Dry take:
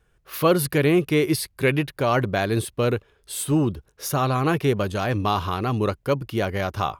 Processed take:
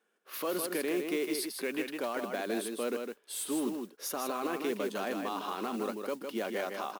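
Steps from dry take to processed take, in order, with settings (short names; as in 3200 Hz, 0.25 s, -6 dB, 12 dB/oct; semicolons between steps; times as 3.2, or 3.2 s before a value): elliptic high-pass 220 Hz, stop band 50 dB; limiter -18.5 dBFS, peak gain reduction 11 dB; modulation noise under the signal 20 dB; on a send: echo 0.157 s -5.5 dB; on the sum: gain -6.5 dB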